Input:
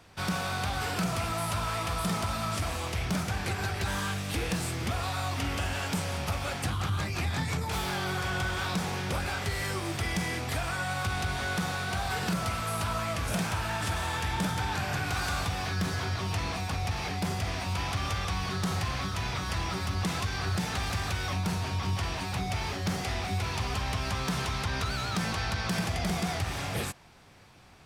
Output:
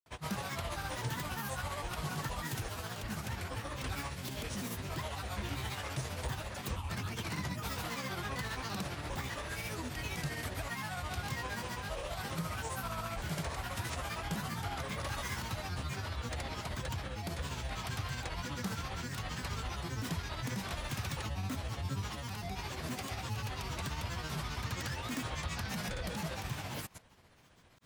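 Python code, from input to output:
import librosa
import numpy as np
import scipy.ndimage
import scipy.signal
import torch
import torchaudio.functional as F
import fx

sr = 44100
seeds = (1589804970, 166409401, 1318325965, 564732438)

y = fx.peak_eq(x, sr, hz=14000.0, db=12.0, octaves=0.4)
y = fx.granulator(y, sr, seeds[0], grain_ms=121.0, per_s=15.0, spray_ms=100.0, spread_st=7)
y = F.gain(torch.from_numpy(y), -6.0).numpy()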